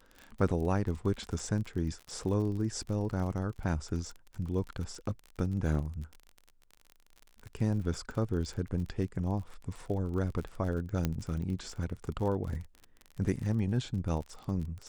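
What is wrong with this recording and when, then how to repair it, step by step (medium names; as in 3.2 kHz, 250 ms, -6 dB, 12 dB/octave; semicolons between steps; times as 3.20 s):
crackle 40 per s -38 dBFS
11.05 s: pop -16 dBFS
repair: de-click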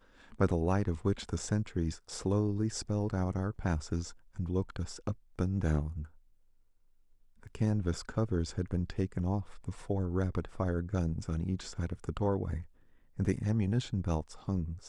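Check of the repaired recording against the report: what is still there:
nothing left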